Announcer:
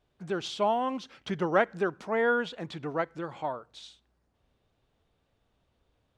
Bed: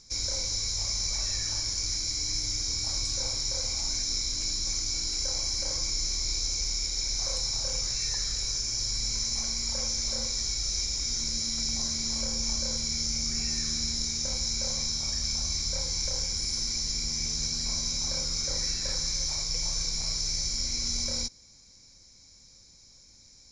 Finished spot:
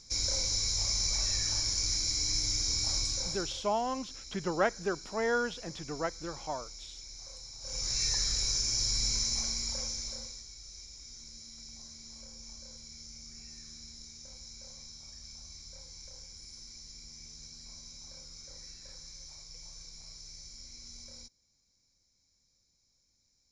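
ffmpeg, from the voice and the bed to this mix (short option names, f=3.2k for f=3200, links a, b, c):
-filter_complex "[0:a]adelay=3050,volume=-4dB[a];[1:a]volume=16.5dB,afade=t=out:st=2.93:d=0.74:silence=0.149624,afade=t=in:st=7.6:d=0.41:silence=0.141254,afade=t=out:st=9.05:d=1.4:silence=0.11885[b];[a][b]amix=inputs=2:normalize=0"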